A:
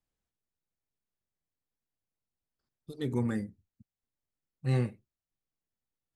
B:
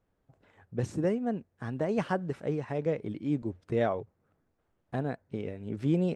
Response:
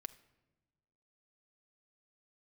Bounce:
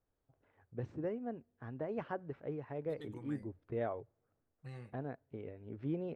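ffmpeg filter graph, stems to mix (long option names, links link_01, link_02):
-filter_complex "[0:a]acompressor=threshold=-33dB:ratio=6,equalizer=frequency=230:width_type=o:width=2.7:gain=-10.5,volume=-5dB[link_01];[1:a]lowpass=3100,equalizer=frequency=190:width_type=o:width=0.32:gain=-10,volume=-9.5dB,asplit=2[link_02][link_03];[link_03]volume=-17dB[link_04];[2:a]atrim=start_sample=2205[link_05];[link_04][link_05]afir=irnorm=-1:irlink=0[link_06];[link_01][link_02][link_06]amix=inputs=3:normalize=0,highshelf=frequency=3400:gain=-9"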